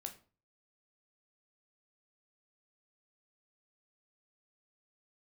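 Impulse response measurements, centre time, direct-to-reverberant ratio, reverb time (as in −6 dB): 11 ms, 4.5 dB, 0.40 s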